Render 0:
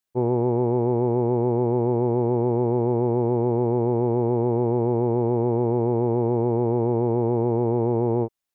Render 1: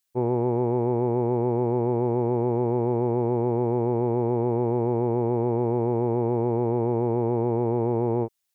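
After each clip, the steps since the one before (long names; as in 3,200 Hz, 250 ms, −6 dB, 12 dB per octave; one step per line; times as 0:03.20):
high-shelf EQ 2,000 Hz +10.5 dB
level −2.5 dB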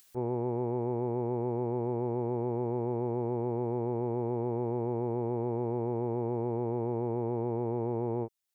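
upward compression, threshold −34 dBFS
level −8 dB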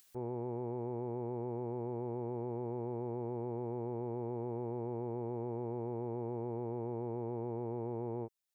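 brickwall limiter −25.5 dBFS, peak gain reduction 4 dB
level −4 dB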